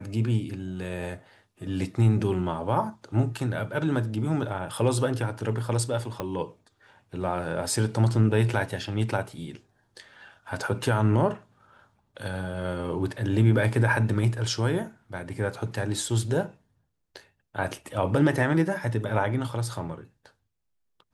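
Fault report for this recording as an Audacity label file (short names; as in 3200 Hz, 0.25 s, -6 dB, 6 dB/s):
6.200000	6.200000	pop -16 dBFS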